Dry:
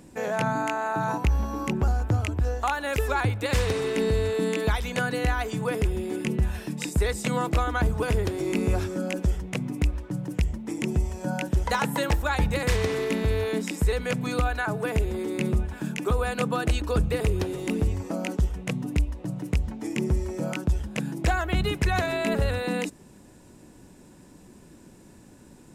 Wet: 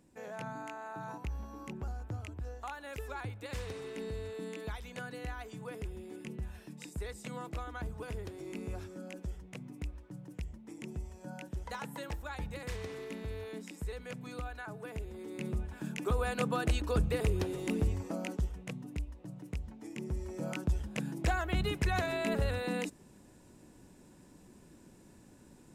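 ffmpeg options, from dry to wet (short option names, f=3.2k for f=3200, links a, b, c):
-af "volume=1dB,afade=t=in:st=15.14:d=1.15:silence=0.316228,afade=t=out:st=17.9:d=0.94:silence=0.398107,afade=t=in:st=20.04:d=0.55:silence=0.446684"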